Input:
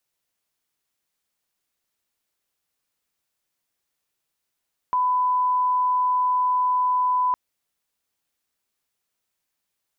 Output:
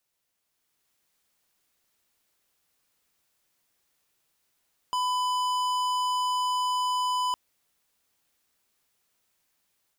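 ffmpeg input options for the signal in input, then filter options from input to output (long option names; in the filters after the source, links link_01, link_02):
-f lavfi -i "sine=frequency=1000:duration=2.41:sample_rate=44100,volume=0.06dB"
-af "dynaudnorm=framelen=450:gausssize=3:maxgain=6dB,asoftclip=type=hard:threshold=-26.5dB"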